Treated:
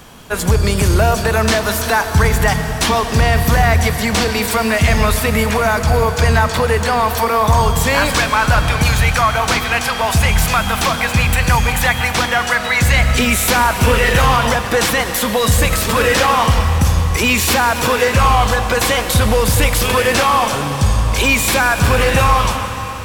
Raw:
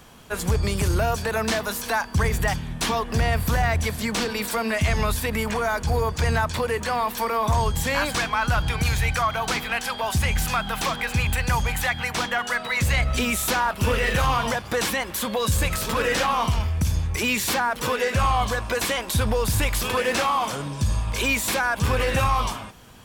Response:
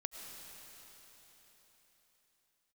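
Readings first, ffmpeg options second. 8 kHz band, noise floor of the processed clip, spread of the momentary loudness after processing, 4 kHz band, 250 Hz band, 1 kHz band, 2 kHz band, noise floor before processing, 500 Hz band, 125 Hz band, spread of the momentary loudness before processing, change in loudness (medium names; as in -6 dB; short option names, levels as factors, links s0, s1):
+9.5 dB, -22 dBFS, 3 LU, +9.5 dB, +9.5 dB, +9.0 dB, +9.5 dB, -36 dBFS, +9.5 dB, +9.5 dB, 4 LU, +9.5 dB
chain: -filter_complex "[0:a]asplit=2[s0][s1];[1:a]atrim=start_sample=2205[s2];[s1][s2]afir=irnorm=-1:irlink=0,volume=1.68[s3];[s0][s3]amix=inputs=2:normalize=0,volume=1.26"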